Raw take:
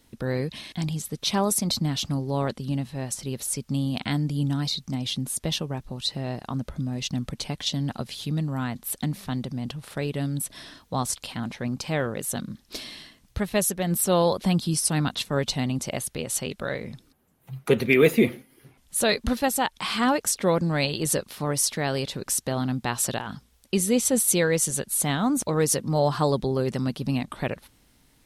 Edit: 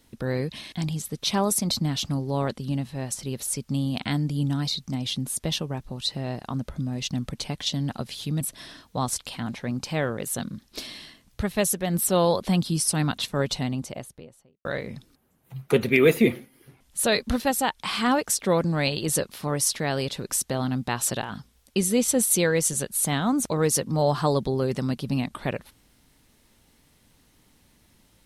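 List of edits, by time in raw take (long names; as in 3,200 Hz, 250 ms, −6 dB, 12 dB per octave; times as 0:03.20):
0:08.41–0:10.38: remove
0:15.35–0:16.62: fade out and dull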